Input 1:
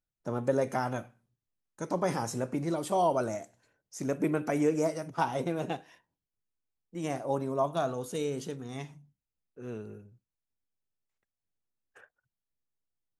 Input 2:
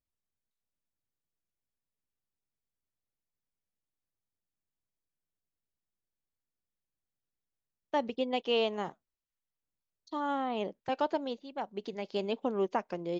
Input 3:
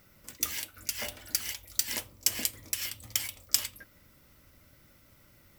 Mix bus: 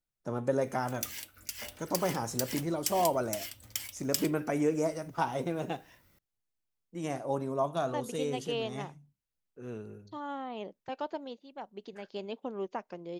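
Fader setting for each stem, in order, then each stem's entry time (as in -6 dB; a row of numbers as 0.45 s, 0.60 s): -1.5 dB, -6.0 dB, -6.0 dB; 0.00 s, 0.00 s, 0.60 s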